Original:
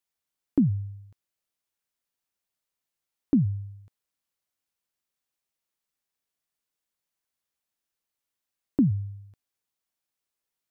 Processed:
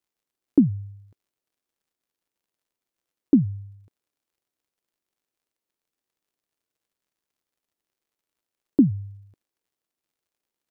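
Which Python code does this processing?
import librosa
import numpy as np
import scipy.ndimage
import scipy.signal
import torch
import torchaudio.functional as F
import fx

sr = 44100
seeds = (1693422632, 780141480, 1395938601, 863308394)

y = fx.peak_eq(x, sr, hz=350.0, db=12.0, octaves=1.7)
y = fx.dmg_crackle(y, sr, seeds[0], per_s=91.0, level_db=-62.0)
y = y * 10.0 ** (-4.0 / 20.0)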